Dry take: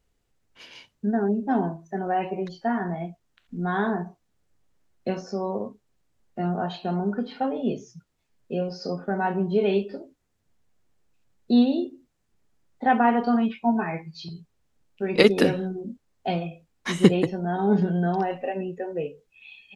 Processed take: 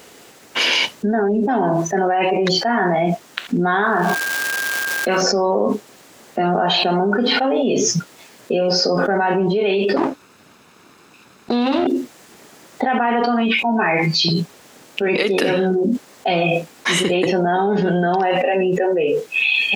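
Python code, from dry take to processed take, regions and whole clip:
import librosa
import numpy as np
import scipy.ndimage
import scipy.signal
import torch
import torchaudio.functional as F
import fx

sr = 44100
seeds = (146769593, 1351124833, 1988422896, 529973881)

y = fx.peak_eq(x, sr, hz=1300.0, db=12.5, octaves=0.72, at=(3.82, 5.2), fade=0.02)
y = fx.dmg_tone(y, sr, hz=1600.0, level_db=-56.0, at=(3.82, 5.2), fade=0.02)
y = fx.dmg_crackle(y, sr, seeds[0], per_s=550.0, level_db=-47.0, at=(3.82, 5.2), fade=0.02)
y = fx.chain(y, sr, fx.lower_of_two(delay_ms=0.76),
    fx.high_shelf(hz=5700.0, db=-10.5), at=(9.96, 11.87))
y = fx.dynamic_eq(y, sr, hz=2600.0, q=1.1, threshold_db=-45.0, ratio=4.0, max_db=5)
y = scipy.signal.sosfilt(scipy.signal.butter(2, 290.0, 'highpass', fs=sr, output='sos'), y)
y = fx.env_flatten(y, sr, amount_pct=100)
y = y * librosa.db_to_amplitude(-4.5)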